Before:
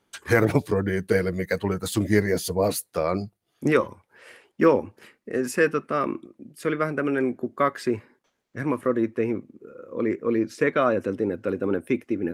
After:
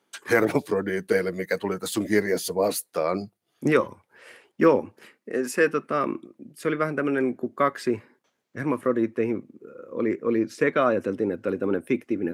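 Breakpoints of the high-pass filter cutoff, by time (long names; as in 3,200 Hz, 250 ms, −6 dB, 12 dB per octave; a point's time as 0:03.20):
0:02.98 220 Hz
0:03.71 100 Hz
0:04.65 100 Hz
0:05.50 240 Hz
0:05.98 110 Hz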